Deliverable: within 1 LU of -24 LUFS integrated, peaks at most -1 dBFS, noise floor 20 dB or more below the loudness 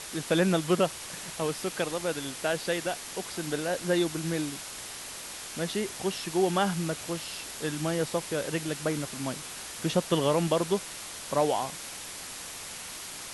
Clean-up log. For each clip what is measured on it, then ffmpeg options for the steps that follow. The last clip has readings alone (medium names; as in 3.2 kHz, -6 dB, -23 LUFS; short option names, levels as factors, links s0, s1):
noise floor -41 dBFS; noise floor target -51 dBFS; loudness -30.5 LUFS; peak level -11.5 dBFS; loudness target -24.0 LUFS
-> -af "afftdn=nr=10:nf=-41"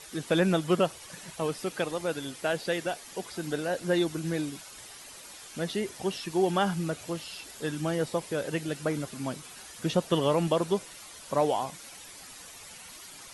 noise floor -47 dBFS; noise floor target -50 dBFS
-> -af "afftdn=nr=6:nf=-47"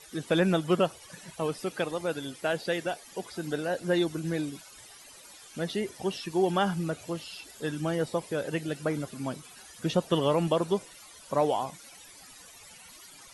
noise floor -51 dBFS; loudness -30.5 LUFS; peak level -12.0 dBFS; loudness target -24.0 LUFS
-> -af "volume=2.11"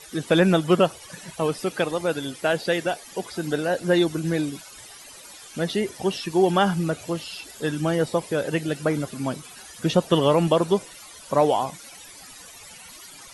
loudness -24.0 LUFS; peak level -5.5 dBFS; noise floor -45 dBFS